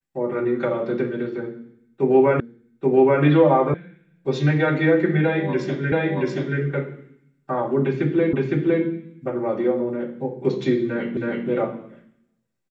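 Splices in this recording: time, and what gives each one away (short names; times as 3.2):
2.4 repeat of the last 0.83 s
3.74 sound cut off
5.92 repeat of the last 0.68 s
8.33 repeat of the last 0.51 s
11.17 repeat of the last 0.32 s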